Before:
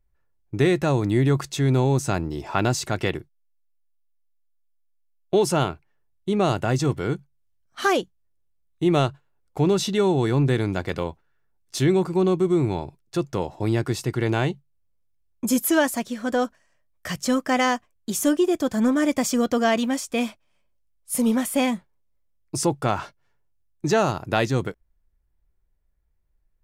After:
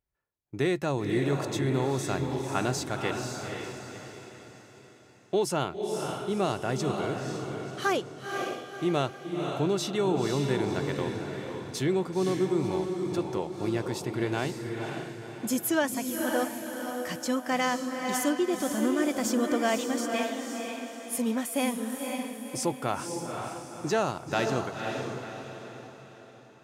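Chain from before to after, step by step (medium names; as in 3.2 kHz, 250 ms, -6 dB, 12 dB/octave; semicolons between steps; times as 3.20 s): high-pass 180 Hz 6 dB/octave; echo that smears into a reverb 515 ms, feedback 45%, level -4 dB; trim -6 dB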